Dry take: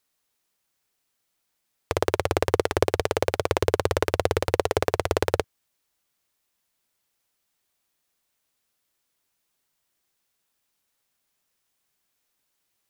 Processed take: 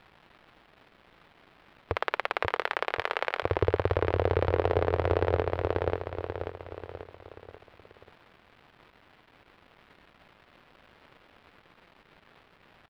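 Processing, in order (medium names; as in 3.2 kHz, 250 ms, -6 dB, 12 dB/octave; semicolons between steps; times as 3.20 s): 1.96–3.43 s: high-pass 1.3 kHz 12 dB/octave; crackle 550 per s -43 dBFS; distance through air 430 m; on a send: feedback delay 537 ms, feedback 48%, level -11.5 dB; on the sum: loudness maximiser +16 dB; trim -9 dB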